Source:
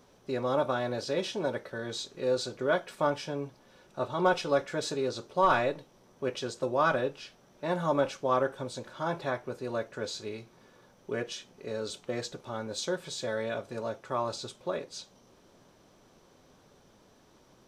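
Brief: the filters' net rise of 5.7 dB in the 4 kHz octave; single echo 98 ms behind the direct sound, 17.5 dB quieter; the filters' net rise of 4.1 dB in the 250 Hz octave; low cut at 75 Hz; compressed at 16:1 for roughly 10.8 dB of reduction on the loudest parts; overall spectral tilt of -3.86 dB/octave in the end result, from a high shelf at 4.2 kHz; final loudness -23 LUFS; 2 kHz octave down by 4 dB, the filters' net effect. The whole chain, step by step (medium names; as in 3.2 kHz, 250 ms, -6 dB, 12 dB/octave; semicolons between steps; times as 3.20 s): high-pass 75 Hz; peaking EQ 250 Hz +5.5 dB; peaking EQ 2 kHz -8.5 dB; peaking EQ 4 kHz +5.5 dB; treble shelf 4.2 kHz +5.5 dB; compression 16:1, threshold -30 dBFS; delay 98 ms -17.5 dB; trim +13 dB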